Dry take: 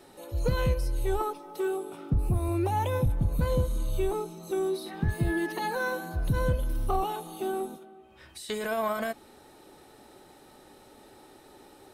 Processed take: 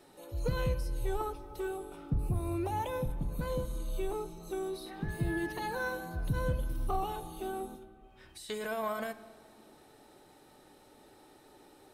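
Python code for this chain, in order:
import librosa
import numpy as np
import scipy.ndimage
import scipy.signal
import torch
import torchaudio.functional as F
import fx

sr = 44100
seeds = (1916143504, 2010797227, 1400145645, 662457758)

y = fx.peak_eq(x, sr, hz=88.0, db=-10.5, octaves=1.1, at=(2.82, 5.1))
y = fx.room_shoebox(y, sr, seeds[0], volume_m3=3100.0, walls='mixed', distance_m=0.44)
y = F.gain(torch.from_numpy(y), -5.5).numpy()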